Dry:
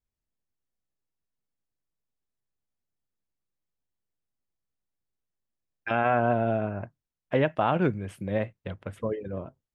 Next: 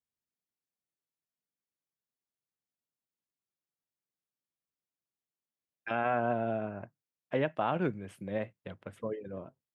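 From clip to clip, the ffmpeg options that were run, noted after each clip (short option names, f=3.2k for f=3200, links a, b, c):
-af "highpass=130,volume=-6dB"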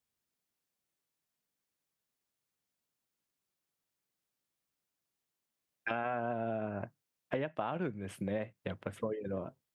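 -af "acompressor=threshold=-39dB:ratio=6,volume=6.5dB"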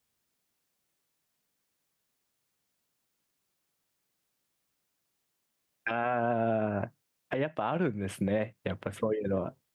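-af "alimiter=level_in=2.5dB:limit=-24dB:level=0:latency=1:release=85,volume=-2.5dB,volume=7.5dB"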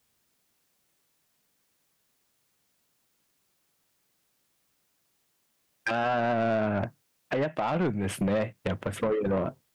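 -af "asoftclip=type=tanh:threshold=-28.5dB,volume=7dB"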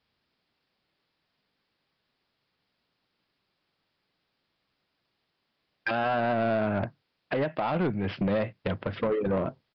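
-af "aresample=11025,aresample=44100"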